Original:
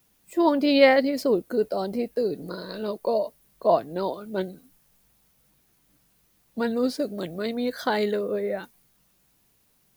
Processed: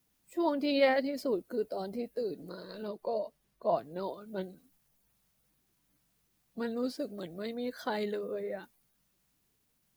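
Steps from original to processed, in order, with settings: bin magnitudes rounded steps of 15 dB; 2.88–3.76 high shelf 7400 Hz -9 dB; gain -9 dB

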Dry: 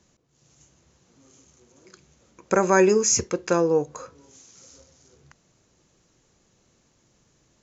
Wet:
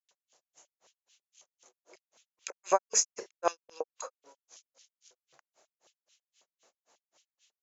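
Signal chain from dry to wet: grains 0.156 s, grains 3.8/s, pitch spread up and down by 0 st; LFO high-pass square 4.6 Hz 650–3000 Hz

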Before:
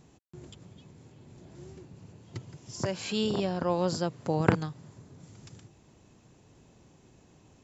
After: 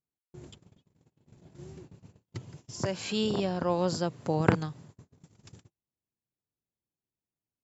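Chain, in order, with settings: 0.94–1.85 bell 160 Hz +3.5 dB 0.42 oct; gate -48 dBFS, range -39 dB

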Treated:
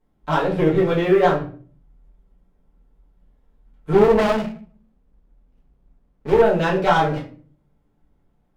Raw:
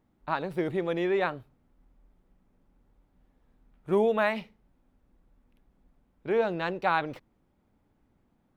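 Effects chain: treble ducked by the level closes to 1900 Hz, closed at -22.5 dBFS; sample leveller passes 2; shoebox room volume 32 m³, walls mixed, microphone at 1.4 m; 3.93–6.42 running maximum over 17 samples; gain -4 dB

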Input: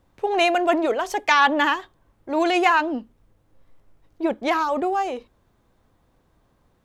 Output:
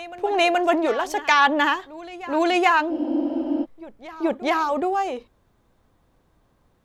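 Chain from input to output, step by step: reverse echo 0.425 s -17.5 dB; spectral freeze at 2.93, 0.70 s

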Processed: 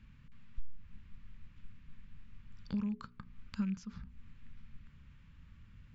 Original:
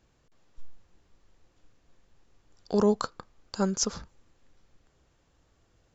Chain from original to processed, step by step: rattling part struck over -31 dBFS, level -32 dBFS; Butterworth band-stop 720 Hz, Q 3.3; high shelf 3400 Hz +7 dB; notches 60/120/180/240/300/360/420 Hz; compressor 12:1, threshold -42 dBFS, peak gain reduction 24 dB; EQ curve 230 Hz 0 dB, 340 Hz -22 dB, 510 Hz -24 dB, 1200 Hz -12 dB, 2400 Hz -7 dB, 6500 Hz -30 dB; gain +12.5 dB

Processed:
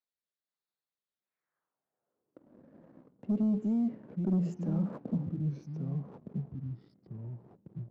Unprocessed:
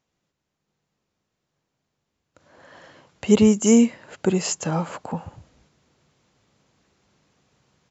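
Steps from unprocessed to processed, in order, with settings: Wiener smoothing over 15 samples; HPF 81 Hz 24 dB/oct; de-hum 142.7 Hz, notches 21; reverse; compressor 12:1, threshold -25 dBFS, peak gain reduction 15.5 dB; reverse; band-pass sweep 4000 Hz -> 220 Hz, 1.09–2.57; limiter -29.5 dBFS, peak gain reduction 8.5 dB; rotary speaker horn 1.2 Hz; echoes that change speed 0.257 s, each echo -3 st, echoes 2, each echo -6 dB; sample leveller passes 1; gain +5.5 dB

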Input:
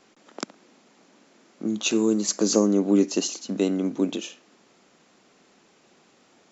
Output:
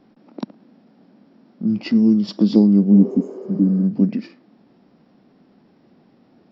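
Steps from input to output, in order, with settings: tilt shelf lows +9 dB, about 1200 Hz; formant shift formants -5 st; spectral repair 2.97–3.8, 340–6200 Hz both

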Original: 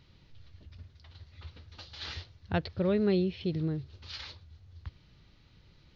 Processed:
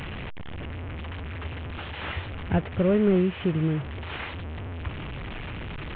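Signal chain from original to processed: delta modulation 16 kbps, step -38 dBFS; in parallel at -1 dB: compressor, threshold -36 dBFS, peak gain reduction 13 dB; on the sum: gain +4 dB

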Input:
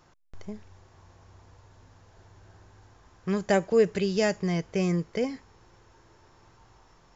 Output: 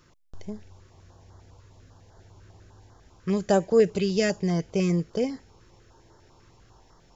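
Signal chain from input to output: stepped notch 10 Hz 770–2500 Hz; gain +2.5 dB

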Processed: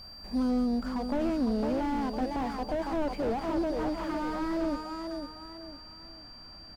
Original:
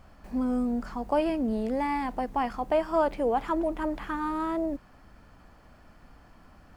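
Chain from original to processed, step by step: whine 4700 Hz -45 dBFS; feedback echo 0.505 s, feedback 35%, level -8 dB; slew limiter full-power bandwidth 21 Hz

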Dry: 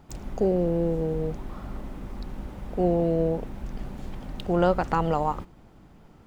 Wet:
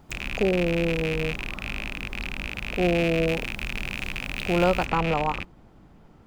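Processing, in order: rattling part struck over -39 dBFS, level -18 dBFS; high shelf 5700 Hz +4 dB, from 3.28 s +9 dB, from 4.86 s -5 dB

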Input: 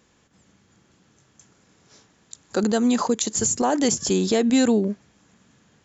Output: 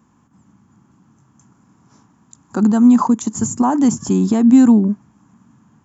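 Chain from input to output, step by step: ten-band EQ 125 Hz +7 dB, 250 Hz +11 dB, 500 Hz -11 dB, 1000 Hz +12 dB, 2000 Hz -6 dB, 4000 Hz -12 dB

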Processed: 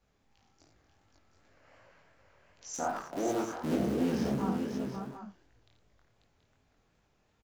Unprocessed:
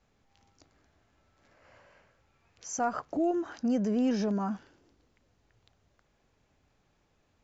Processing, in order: 2.74–4.42 cycle switcher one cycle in 3, muted; tapped delay 52/87/309/540/729/752 ms -7/-8.5/-18.5/-5/-10.5/-13.5 dB; chorus 2.7 Hz, delay 18.5 ms, depth 8 ms

